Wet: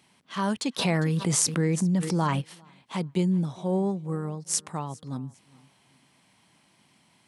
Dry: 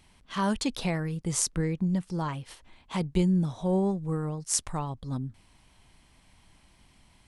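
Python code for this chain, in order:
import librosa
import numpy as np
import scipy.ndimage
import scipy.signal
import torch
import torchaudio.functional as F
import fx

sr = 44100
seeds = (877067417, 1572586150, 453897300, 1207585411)

y = scipy.signal.sosfilt(scipy.signal.butter(4, 130.0, 'highpass', fs=sr, output='sos'), x)
y = fx.echo_feedback(y, sr, ms=403, feedback_pct=31, wet_db=-23.5)
y = fx.env_flatten(y, sr, amount_pct=70, at=(0.78, 2.4), fade=0.02)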